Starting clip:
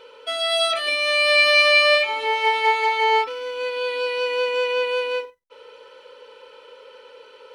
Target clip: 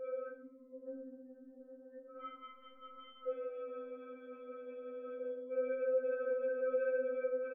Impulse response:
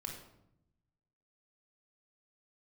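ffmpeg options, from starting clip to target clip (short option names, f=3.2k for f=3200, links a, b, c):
-filter_complex "[0:a]acompressor=threshold=-38dB:ratio=3,asuperpass=centerf=250:order=20:qfactor=0.61,asplit=2[a][b];[b]adelay=36,volume=-8dB[c];[a][c]amix=inputs=2:normalize=0,alimiter=level_in=14dB:limit=-24dB:level=0:latency=1:release=112,volume=-14dB,aeval=exprs='0.0133*sin(PI/2*2.24*val(0)/0.0133)':c=same,dynaudnorm=f=520:g=3:m=3.5dB[d];[1:a]atrim=start_sample=2205,afade=t=out:st=0.25:d=0.01,atrim=end_sample=11466[e];[d][e]afir=irnorm=-1:irlink=0,crystalizer=i=4:c=0,asplit=4[f][g][h][i];[g]adelay=198,afreqshift=-120,volume=-20.5dB[j];[h]adelay=396,afreqshift=-240,volume=-27.8dB[k];[i]adelay=594,afreqshift=-360,volume=-35.2dB[l];[f][j][k][l]amix=inputs=4:normalize=0,afftfilt=real='re*3.46*eq(mod(b,12),0)':imag='im*3.46*eq(mod(b,12),0)':win_size=2048:overlap=0.75,volume=3dB"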